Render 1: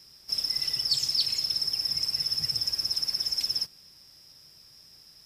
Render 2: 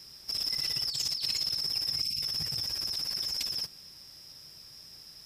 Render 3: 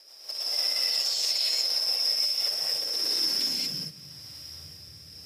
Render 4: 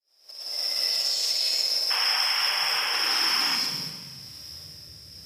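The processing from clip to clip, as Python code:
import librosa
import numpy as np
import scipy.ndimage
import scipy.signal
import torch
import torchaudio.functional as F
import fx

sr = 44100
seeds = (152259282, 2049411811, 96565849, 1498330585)

y1 = fx.spec_box(x, sr, start_s=2.02, length_s=0.2, low_hz=300.0, high_hz=2100.0, gain_db=-22)
y1 = fx.over_compress(y1, sr, threshold_db=-32.0, ratio=-1.0)
y2 = fx.rotary_switch(y1, sr, hz=6.3, then_hz=0.85, switch_at_s=1.91)
y2 = fx.rev_gated(y2, sr, seeds[0], gate_ms=260, shape='rising', drr_db=-7.0)
y2 = fx.filter_sweep_highpass(y2, sr, from_hz=600.0, to_hz=77.0, start_s=2.68, end_s=4.53, q=3.0)
y3 = fx.fade_in_head(y2, sr, length_s=0.83)
y3 = fx.spec_paint(y3, sr, seeds[1], shape='noise', start_s=1.9, length_s=1.66, low_hz=720.0, high_hz=3400.0, level_db=-31.0)
y3 = fx.rev_schroeder(y3, sr, rt60_s=1.5, comb_ms=30, drr_db=4.5)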